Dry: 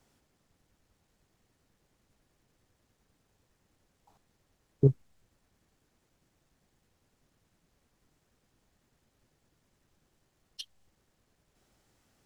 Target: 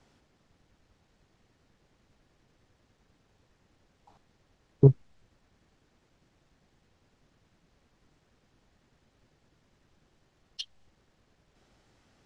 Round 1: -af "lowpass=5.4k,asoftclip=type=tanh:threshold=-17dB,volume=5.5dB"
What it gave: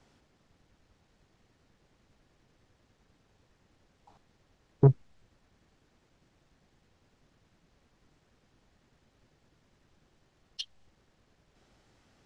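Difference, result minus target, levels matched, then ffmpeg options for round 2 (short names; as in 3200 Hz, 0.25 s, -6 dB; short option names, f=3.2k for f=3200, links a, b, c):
soft clip: distortion +11 dB
-af "lowpass=5.4k,asoftclip=type=tanh:threshold=-9.5dB,volume=5.5dB"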